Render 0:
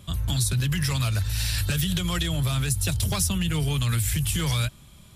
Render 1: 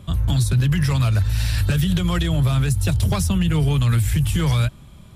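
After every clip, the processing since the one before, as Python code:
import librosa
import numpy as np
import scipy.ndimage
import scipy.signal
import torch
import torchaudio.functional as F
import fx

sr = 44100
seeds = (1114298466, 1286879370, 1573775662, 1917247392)

y = fx.high_shelf(x, sr, hz=2300.0, db=-11.5)
y = y * librosa.db_to_amplitude(7.0)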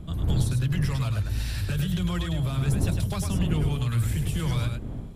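y = fx.dmg_wind(x, sr, seeds[0], corner_hz=150.0, level_db=-24.0)
y = y + 10.0 ** (-5.5 / 20.0) * np.pad(y, (int(103 * sr / 1000.0), 0))[:len(y)]
y = y * librosa.db_to_amplitude(-9.0)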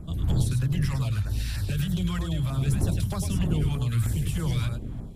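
y = fx.filter_lfo_notch(x, sr, shape='saw_down', hz=3.2, low_hz=320.0, high_hz=3800.0, q=0.96)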